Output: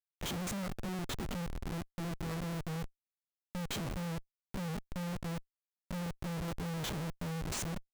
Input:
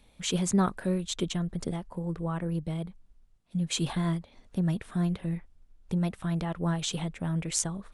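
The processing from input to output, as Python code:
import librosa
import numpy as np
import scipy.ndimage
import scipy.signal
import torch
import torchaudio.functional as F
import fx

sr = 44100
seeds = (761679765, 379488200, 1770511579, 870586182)

y = fx.spec_steps(x, sr, hold_ms=50)
y = fx.schmitt(y, sr, flips_db=-34.0)
y = F.gain(torch.from_numpy(y), -5.5).numpy()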